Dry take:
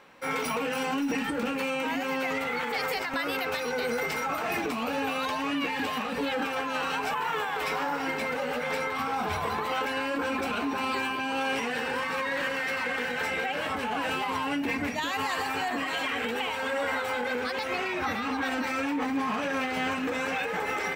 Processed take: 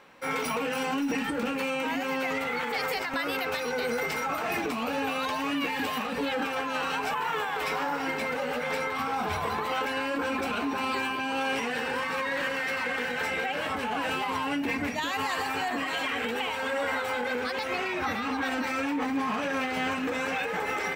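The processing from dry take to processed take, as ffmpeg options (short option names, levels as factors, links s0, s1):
-filter_complex "[0:a]asettb=1/sr,asplit=3[s0][s1][s2];[s0]atrim=end=5.344[s3];[s1]atrim=start=5.34:end=6.07,asetpts=PTS-STARTPTS,afade=t=in:d=0.004:c=qsin,afade=t=out:st=0.726:d=0.004:c=qsin,highshelf=f=11000:g=8[s4];[s2]atrim=start=6.066[s5];[s3][s4]acrossfade=d=0.004:c1=hsin:c2=qsin[s6];[s6][s5]acrossfade=d=0.004:c1=qsin:c2=hsin"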